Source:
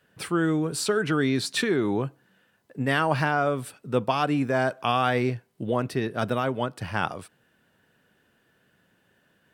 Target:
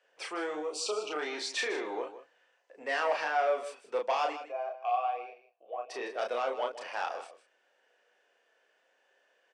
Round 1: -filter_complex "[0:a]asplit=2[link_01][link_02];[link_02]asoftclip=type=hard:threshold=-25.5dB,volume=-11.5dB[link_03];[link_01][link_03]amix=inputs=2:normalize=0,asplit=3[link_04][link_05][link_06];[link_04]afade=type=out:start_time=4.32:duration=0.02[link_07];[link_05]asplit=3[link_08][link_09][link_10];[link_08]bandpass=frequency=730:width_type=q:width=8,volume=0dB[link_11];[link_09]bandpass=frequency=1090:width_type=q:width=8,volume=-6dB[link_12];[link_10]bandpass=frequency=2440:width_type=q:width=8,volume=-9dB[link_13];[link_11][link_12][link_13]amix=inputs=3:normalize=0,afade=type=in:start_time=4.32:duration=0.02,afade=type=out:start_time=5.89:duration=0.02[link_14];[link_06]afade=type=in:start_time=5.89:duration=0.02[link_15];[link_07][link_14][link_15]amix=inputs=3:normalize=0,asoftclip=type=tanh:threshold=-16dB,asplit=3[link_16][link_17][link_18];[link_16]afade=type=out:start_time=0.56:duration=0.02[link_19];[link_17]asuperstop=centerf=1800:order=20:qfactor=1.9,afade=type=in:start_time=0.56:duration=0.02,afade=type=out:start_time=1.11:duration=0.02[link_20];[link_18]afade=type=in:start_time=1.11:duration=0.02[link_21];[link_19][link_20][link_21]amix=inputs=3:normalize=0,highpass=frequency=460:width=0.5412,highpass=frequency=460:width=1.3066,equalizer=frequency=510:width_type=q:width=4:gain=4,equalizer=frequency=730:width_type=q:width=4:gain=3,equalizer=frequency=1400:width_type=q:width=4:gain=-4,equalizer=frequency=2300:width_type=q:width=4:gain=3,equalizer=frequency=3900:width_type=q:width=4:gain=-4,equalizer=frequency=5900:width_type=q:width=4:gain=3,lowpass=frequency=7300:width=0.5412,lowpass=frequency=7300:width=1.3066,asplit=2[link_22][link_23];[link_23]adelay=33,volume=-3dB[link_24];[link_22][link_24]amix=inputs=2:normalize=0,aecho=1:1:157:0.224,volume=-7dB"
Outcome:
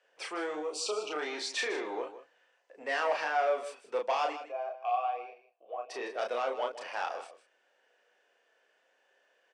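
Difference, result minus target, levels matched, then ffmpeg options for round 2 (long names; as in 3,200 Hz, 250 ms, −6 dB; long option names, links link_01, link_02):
hard clipping: distortion +12 dB
-filter_complex "[0:a]asplit=2[link_01][link_02];[link_02]asoftclip=type=hard:threshold=-15.5dB,volume=-11.5dB[link_03];[link_01][link_03]amix=inputs=2:normalize=0,asplit=3[link_04][link_05][link_06];[link_04]afade=type=out:start_time=4.32:duration=0.02[link_07];[link_05]asplit=3[link_08][link_09][link_10];[link_08]bandpass=frequency=730:width_type=q:width=8,volume=0dB[link_11];[link_09]bandpass=frequency=1090:width_type=q:width=8,volume=-6dB[link_12];[link_10]bandpass=frequency=2440:width_type=q:width=8,volume=-9dB[link_13];[link_11][link_12][link_13]amix=inputs=3:normalize=0,afade=type=in:start_time=4.32:duration=0.02,afade=type=out:start_time=5.89:duration=0.02[link_14];[link_06]afade=type=in:start_time=5.89:duration=0.02[link_15];[link_07][link_14][link_15]amix=inputs=3:normalize=0,asoftclip=type=tanh:threshold=-16dB,asplit=3[link_16][link_17][link_18];[link_16]afade=type=out:start_time=0.56:duration=0.02[link_19];[link_17]asuperstop=centerf=1800:order=20:qfactor=1.9,afade=type=in:start_time=0.56:duration=0.02,afade=type=out:start_time=1.11:duration=0.02[link_20];[link_18]afade=type=in:start_time=1.11:duration=0.02[link_21];[link_19][link_20][link_21]amix=inputs=3:normalize=0,highpass=frequency=460:width=0.5412,highpass=frequency=460:width=1.3066,equalizer=frequency=510:width_type=q:width=4:gain=4,equalizer=frequency=730:width_type=q:width=4:gain=3,equalizer=frequency=1400:width_type=q:width=4:gain=-4,equalizer=frequency=2300:width_type=q:width=4:gain=3,equalizer=frequency=3900:width_type=q:width=4:gain=-4,equalizer=frequency=5900:width_type=q:width=4:gain=3,lowpass=frequency=7300:width=0.5412,lowpass=frequency=7300:width=1.3066,asplit=2[link_22][link_23];[link_23]adelay=33,volume=-3dB[link_24];[link_22][link_24]amix=inputs=2:normalize=0,aecho=1:1:157:0.224,volume=-7dB"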